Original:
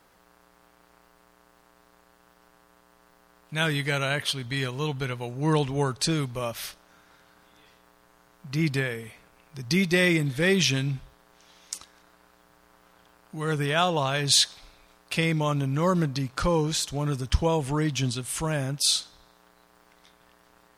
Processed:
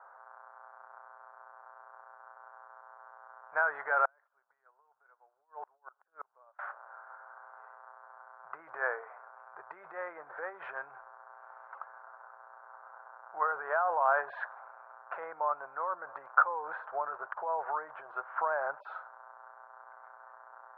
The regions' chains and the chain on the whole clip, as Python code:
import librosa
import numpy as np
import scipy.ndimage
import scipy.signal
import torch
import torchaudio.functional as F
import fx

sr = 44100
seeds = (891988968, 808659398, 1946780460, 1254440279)

y = fx.chain(x, sr, fx.over_compress(threshold_db=-30.0, ratio=-0.5),
    fx.gate_flip(shuts_db=-27.0, range_db=-37), at=(4.05, 6.59))
y = scipy.signal.sosfilt(scipy.signal.cheby1(5, 1.0, 1500.0, 'lowpass', fs=sr, output='sos'), y)
y = fx.over_compress(y, sr, threshold_db=-30.0, ratio=-1.0)
y = scipy.signal.sosfilt(scipy.signal.cheby2(4, 50, 260.0, 'highpass', fs=sr, output='sos'), y)
y = y * 10.0 ** (7.0 / 20.0)